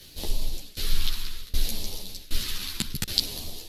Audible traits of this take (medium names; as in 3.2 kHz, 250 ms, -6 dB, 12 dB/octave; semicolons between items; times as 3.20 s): phasing stages 2, 0.65 Hz, lowest notch 600–1400 Hz; a quantiser's noise floor 12-bit, dither none; tremolo saw down 1.3 Hz, depth 95%; a shimmering, thickened sound